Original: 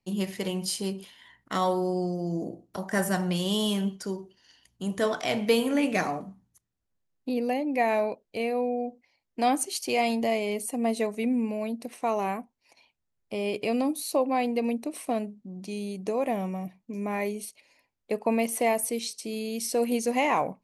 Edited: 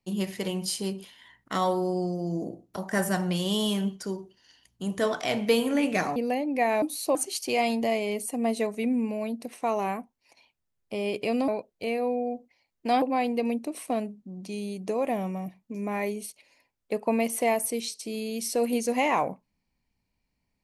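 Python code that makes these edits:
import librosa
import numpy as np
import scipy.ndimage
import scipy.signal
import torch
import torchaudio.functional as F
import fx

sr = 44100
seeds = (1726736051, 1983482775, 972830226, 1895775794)

y = fx.edit(x, sr, fx.cut(start_s=6.16, length_s=1.19),
    fx.swap(start_s=8.01, length_s=1.54, other_s=13.88, other_length_s=0.33), tone=tone)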